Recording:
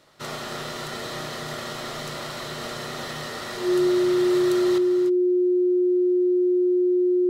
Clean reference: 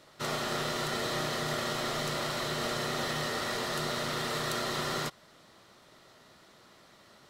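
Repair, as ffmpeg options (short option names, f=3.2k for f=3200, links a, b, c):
-af "bandreject=f=360:w=30,asetnsamples=n=441:p=0,asendcmd='4.78 volume volume 10.5dB',volume=0dB"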